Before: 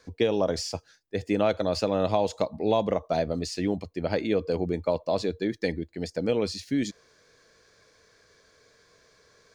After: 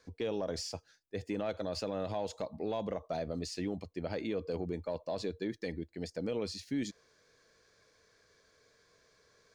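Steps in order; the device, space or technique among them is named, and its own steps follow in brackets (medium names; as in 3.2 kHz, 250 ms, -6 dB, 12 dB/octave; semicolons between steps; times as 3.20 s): soft clipper into limiter (saturation -11 dBFS, distortion -25 dB; peak limiter -19 dBFS, peak gain reduction 6.5 dB); trim -7 dB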